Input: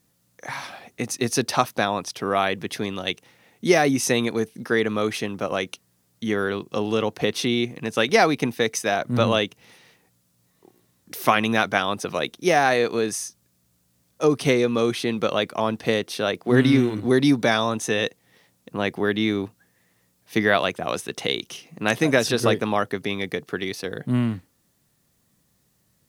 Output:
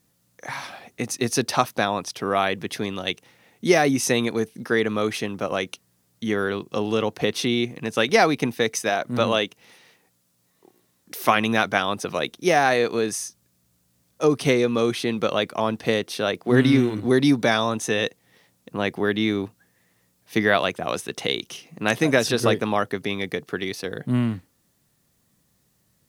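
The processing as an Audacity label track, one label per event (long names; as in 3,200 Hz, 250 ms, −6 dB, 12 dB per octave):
8.890000	11.290000	parametric band 78 Hz −7.5 dB 2.4 octaves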